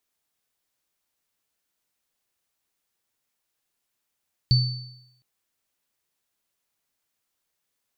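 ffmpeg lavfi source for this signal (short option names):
-f lavfi -i "aevalsrc='0.211*pow(10,-3*t/0.79)*sin(2*PI*125*t)+0.106*pow(10,-3*t/0.86)*sin(2*PI*4520*t)':d=0.71:s=44100"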